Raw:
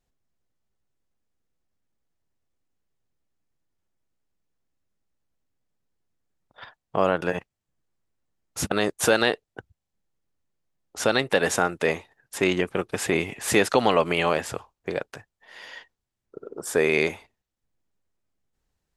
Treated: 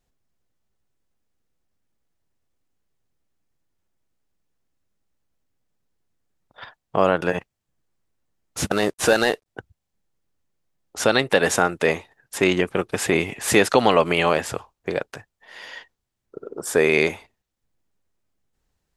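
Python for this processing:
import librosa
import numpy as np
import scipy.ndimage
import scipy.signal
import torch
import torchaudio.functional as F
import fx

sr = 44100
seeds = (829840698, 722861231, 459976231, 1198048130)

y = fx.cvsd(x, sr, bps=64000, at=(8.58, 9.46))
y = F.gain(torch.from_numpy(y), 3.5).numpy()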